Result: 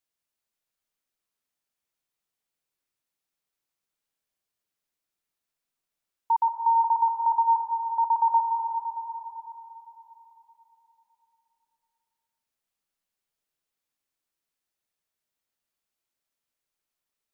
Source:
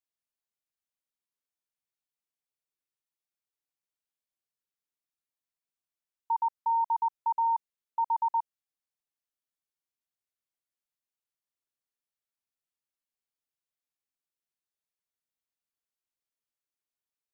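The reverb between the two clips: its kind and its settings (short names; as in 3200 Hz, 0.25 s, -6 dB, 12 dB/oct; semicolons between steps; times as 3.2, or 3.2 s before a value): digital reverb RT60 3.8 s, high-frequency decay 0.5×, pre-delay 0.115 s, DRR 3.5 dB; gain +5.5 dB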